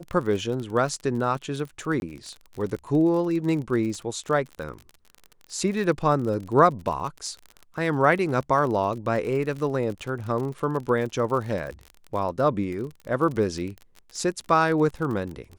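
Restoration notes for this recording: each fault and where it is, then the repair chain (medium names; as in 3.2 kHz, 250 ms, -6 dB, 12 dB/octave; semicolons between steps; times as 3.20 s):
crackle 38 per s -31 dBFS
2.00–2.02 s: dropout 21 ms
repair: de-click; interpolate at 2.00 s, 21 ms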